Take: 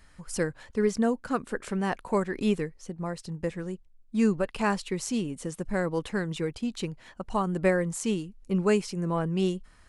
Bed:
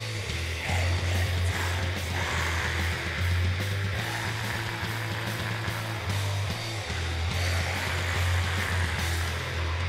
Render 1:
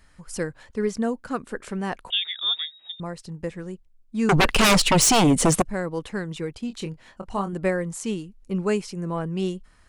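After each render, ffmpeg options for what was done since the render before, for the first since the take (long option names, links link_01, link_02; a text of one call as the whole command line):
ffmpeg -i in.wav -filter_complex "[0:a]asettb=1/sr,asplit=3[link_01][link_02][link_03];[link_01]atrim=end=2.104[link_04];[link_02]atrim=start=2.1:end=3,asetpts=PTS-STARTPTS,afade=type=in:duration=0.004:curve=qsin,afade=type=out:start_time=0.896:duration=0.004:curve=qsin,lowpass=frequency=3200:width_type=q:width=0.5098,lowpass=frequency=3200:width_type=q:width=0.6013,lowpass=frequency=3200:width_type=q:width=0.9,lowpass=frequency=3200:width_type=q:width=2.563,afreqshift=-3800[link_05];[link_03]atrim=start=2.996[link_06];[link_04][link_05]acrossfade=duration=0.004:curve1=hsin:curve2=qsin[link_07];[link_07][link_06]acrossfade=duration=0.004:curve1=qsin:curve2=hsin,asettb=1/sr,asplit=3[link_08][link_09][link_10];[link_08]atrim=end=4.294[link_11];[link_09]atrim=start=4.29:end=5.62,asetpts=PTS-STARTPTS,afade=type=in:duration=0.004:curve=qsin,afade=type=out:start_time=1.326:duration=0.004:curve=qsin,aeval=exprs='0.224*sin(PI/2*7.08*val(0)/0.224)':channel_layout=same[link_12];[link_10]atrim=start=5.616[link_13];[link_11][link_12]acrossfade=duration=0.004:curve1=hsin:curve2=qsin[link_14];[link_14][link_13]acrossfade=duration=0.004:curve1=qsin:curve2=hsin,asettb=1/sr,asplit=3[link_15][link_16][link_17];[link_15]atrim=end=6.674[link_18];[link_16]atrim=start=6.67:end=7.53,asetpts=PTS-STARTPTS,afade=type=in:duration=0.004:curve=qsin,afade=type=out:start_time=0.856:duration=0.004:curve=qsin,asplit=2[link_19][link_20];[link_20]adelay=25,volume=-8.5dB[link_21];[link_19][link_21]amix=inputs=2:normalize=0,atrim=end_sample=37926[link_22];[link_17]atrim=start=7.526[link_23];[link_18][link_22]acrossfade=duration=0.004:curve1=hsin:curve2=qsin[link_24];[link_24][link_23]acrossfade=duration=0.004:curve1=qsin:curve2=hsin" out.wav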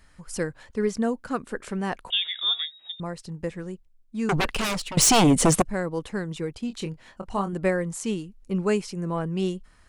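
ffmpeg -i in.wav -filter_complex "[0:a]asplit=3[link_01][link_02][link_03];[link_01]afade=type=out:start_time=2.12:duration=0.02[link_04];[link_02]bandreject=frequency=141.6:width_type=h:width=4,bandreject=frequency=283.2:width_type=h:width=4,bandreject=frequency=424.8:width_type=h:width=4,bandreject=frequency=566.4:width_type=h:width=4,bandreject=frequency=708:width_type=h:width=4,bandreject=frequency=849.6:width_type=h:width=4,bandreject=frequency=991.2:width_type=h:width=4,bandreject=frequency=1132.8:width_type=h:width=4,bandreject=frequency=1274.4:width_type=h:width=4,bandreject=frequency=1416:width_type=h:width=4,bandreject=frequency=1557.6:width_type=h:width=4,bandreject=frequency=1699.2:width_type=h:width=4,bandreject=frequency=1840.8:width_type=h:width=4,bandreject=frequency=1982.4:width_type=h:width=4,bandreject=frequency=2124:width_type=h:width=4,bandreject=frequency=2265.6:width_type=h:width=4,bandreject=frequency=2407.2:width_type=h:width=4,bandreject=frequency=2548.8:width_type=h:width=4,bandreject=frequency=2690.4:width_type=h:width=4,bandreject=frequency=2832:width_type=h:width=4,bandreject=frequency=2973.6:width_type=h:width=4,bandreject=frequency=3115.2:width_type=h:width=4,bandreject=frequency=3256.8:width_type=h:width=4,bandreject=frequency=3398.4:width_type=h:width=4,afade=type=in:start_time=2.12:duration=0.02,afade=type=out:start_time=2.62:duration=0.02[link_05];[link_03]afade=type=in:start_time=2.62:duration=0.02[link_06];[link_04][link_05][link_06]amix=inputs=3:normalize=0,asettb=1/sr,asplit=3[link_07][link_08][link_09];[link_07]atrim=end=5.834[link_10];[link_08]atrim=start=5.83:end=6.57,asetpts=PTS-STARTPTS,afade=type=in:duration=0.004:curve=qsin,afade=type=out:start_time=0.736:duration=0.004:curve=qsin,equalizer=frequency=2400:width_type=o:width=1.8:gain=-2.5[link_11];[link_09]atrim=start=6.566[link_12];[link_10][link_11]acrossfade=duration=0.004:curve1=hsin:curve2=qsin[link_13];[link_13][link_12]acrossfade=duration=0.004:curve1=qsin:curve2=hsin,asplit=2[link_14][link_15];[link_14]atrim=end=4.97,asetpts=PTS-STARTPTS,afade=type=out:start_time=3.62:duration=1.35:silence=0.125893[link_16];[link_15]atrim=start=4.97,asetpts=PTS-STARTPTS,afade=type=in:duration=0.004:curve=hsin:silence=0.125893[link_17];[link_16][link_17]concat=n=2:v=0:a=1" out.wav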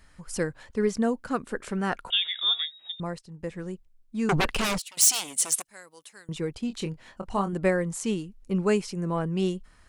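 ffmpeg -i in.wav -filter_complex "[0:a]asettb=1/sr,asplit=3[link_01][link_02][link_03];[link_01]atrim=end=1.774[link_04];[link_02]atrim=start=1.77:end=2.21,asetpts=PTS-STARTPTS,afade=type=in:duration=0.004:curve=qsin,afade=type=out:start_time=0.436:duration=0.004:curve=qsin,equalizer=frequency=1400:width_type=o:width=0.21:gain=12.5[link_05];[link_03]atrim=start=2.206[link_06];[link_04][link_05]acrossfade=duration=0.004:curve1=hsin:curve2=qsin[link_07];[link_07][link_06]acrossfade=duration=0.004:curve1=qsin:curve2=hsin,asettb=1/sr,asplit=3[link_08][link_09][link_10];[link_08]atrim=end=4.784[link_11];[link_09]atrim=start=4.78:end=6.29,asetpts=PTS-STARTPTS,afade=type=in:duration=0.004:curve=qsin,afade=type=out:start_time=1.506:duration=0.004:curve=qsin,aderivative[link_12];[link_10]atrim=start=6.286[link_13];[link_11][link_12]acrossfade=duration=0.004:curve1=hsin:curve2=qsin[link_14];[link_14][link_13]acrossfade=duration=0.004:curve1=qsin:curve2=hsin,asplit=2[link_15][link_16];[link_15]atrim=end=3.19,asetpts=PTS-STARTPTS,afade=type=out:start_time=3.186:duration=0.004:curve=hsin:silence=0.188365[link_17];[link_16]atrim=start=3.19,asetpts=PTS-STARTPTS,afade=type=in:duration=0.48:silence=0.188365[link_18];[link_17][link_18]concat=n=2:v=0:a=1" out.wav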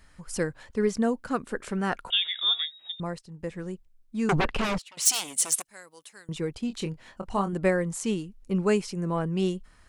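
ffmpeg -i in.wav -filter_complex "[0:a]asplit=3[link_01][link_02][link_03];[link_01]afade=type=out:start_time=4.39:duration=0.02[link_04];[link_02]aemphasis=mode=reproduction:type=75fm,afade=type=in:start_time=4.39:duration=0.02,afade=type=out:start_time=5.05:duration=0.02[link_05];[link_03]afade=type=in:start_time=5.05:duration=0.02[link_06];[link_04][link_05][link_06]amix=inputs=3:normalize=0" out.wav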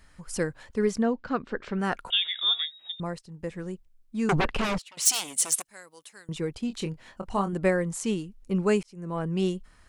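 ffmpeg -i in.wav -filter_complex "[0:a]asettb=1/sr,asplit=3[link_01][link_02][link_03];[link_01]atrim=end=1.024[link_04];[link_02]atrim=start=1.02:end=1.79,asetpts=PTS-STARTPTS,afade=type=in:duration=0.004:curve=qsin,afade=type=out:start_time=0.766:duration=0.004:curve=qsin,lowpass=frequency=4800:width=0.5412,lowpass=frequency=4800:width=1.3066[link_05];[link_03]atrim=start=1.786[link_06];[link_04][link_05]acrossfade=duration=0.004:curve1=hsin:curve2=qsin[link_07];[link_07][link_06]acrossfade=duration=0.004:curve1=qsin:curve2=hsin,asplit=2[link_08][link_09];[link_08]atrim=end=8.83,asetpts=PTS-STARTPTS,afade=type=out:start_time=8.826:duration=0.004:curve=hsin[link_10];[link_09]atrim=start=8.83,asetpts=PTS-STARTPTS,afade=type=in:duration=0.48[link_11];[link_10][link_11]concat=n=2:v=0:a=1" out.wav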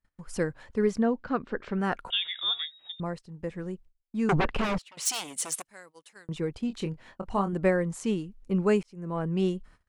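ffmpeg -i in.wav -af "agate=range=-31dB:threshold=-51dB:ratio=16:detection=peak,highshelf=frequency=3700:gain=-8.5" out.wav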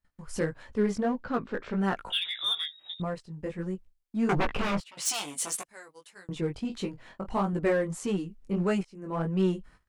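ffmpeg -i in.wav -filter_complex "[0:a]flanger=delay=15.5:depth=5.2:speed=1.6,asplit=2[link_01][link_02];[link_02]asoftclip=type=hard:threshold=-32dB,volume=-5dB[link_03];[link_01][link_03]amix=inputs=2:normalize=0" out.wav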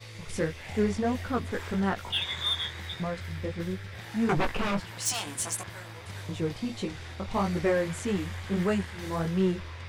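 ffmpeg -i in.wav -i bed.wav -filter_complex "[1:a]volume=-12dB[link_01];[0:a][link_01]amix=inputs=2:normalize=0" out.wav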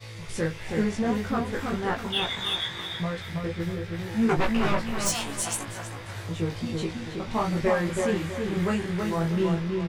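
ffmpeg -i in.wav -filter_complex "[0:a]asplit=2[link_01][link_02];[link_02]adelay=18,volume=-3dB[link_03];[link_01][link_03]amix=inputs=2:normalize=0,asplit=2[link_04][link_05];[link_05]adelay=324,lowpass=frequency=2200:poles=1,volume=-3.5dB,asplit=2[link_06][link_07];[link_07]adelay=324,lowpass=frequency=2200:poles=1,volume=0.36,asplit=2[link_08][link_09];[link_09]adelay=324,lowpass=frequency=2200:poles=1,volume=0.36,asplit=2[link_10][link_11];[link_11]adelay=324,lowpass=frequency=2200:poles=1,volume=0.36,asplit=2[link_12][link_13];[link_13]adelay=324,lowpass=frequency=2200:poles=1,volume=0.36[link_14];[link_06][link_08][link_10][link_12][link_14]amix=inputs=5:normalize=0[link_15];[link_04][link_15]amix=inputs=2:normalize=0" out.wav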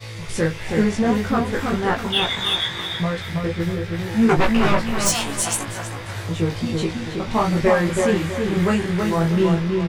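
ffmpeg -i in.wav -af "volume=7dB" out.wav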